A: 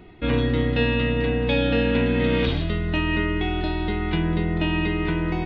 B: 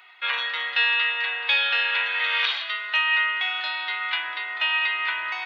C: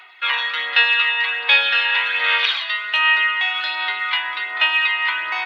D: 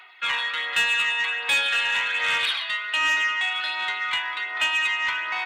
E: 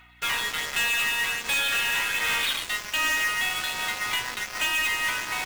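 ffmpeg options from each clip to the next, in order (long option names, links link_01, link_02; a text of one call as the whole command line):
ffmpeg -i in.wav -af "highpass=frequency=1100:width=0.5412,highpass=frequency=1100:width=1.3066,volume=7.5dB" out.wav
ffmpeg -i in.wav -af "aphaser=in_gain=1:out_gain=1:delay=1.1:decay=0.36:speed=1.3:type=sinusoidal,volume=4.5dB" out.wav
ffmpeg -i in.wav -af "asoftclip=type=tanh:threshold=-12.5dB,volume=-3.5dB" out.wav
ffmpeg -i in.wav -af "acrusher=bits=4:mode=log:mix=0:aa=0.000001,aeval=exprs='0.141*(cos(1*acos(clip(val(0)/0.141,-1,1)))-cos(1*PI/2))+0.00501*(cos(4*acos(clip(val(0)/0.141,-1,1)))-cos(4*PI/2))+0.0282*(cos(5*acos(clip(val(0)/0.141,-1,1)))-cos(5*PI/2))+0.0562*(cos(7*acos(clip(val(0)/0.141,-1,1)))-cos(7*PI/2))':channel_layout=same,aeval=exprs='val(0)+0.002*(sin(2*PI*60*n/s)+sin(2*PI*2*60*n/s)/2+sin(2*PI*3*60*n/s)/3+sin(2*PI*4*60*n/s)/4+sin(2*PI*5*60*n/s)/5)':channel_layout=same,volume=-3.5dB" out.wav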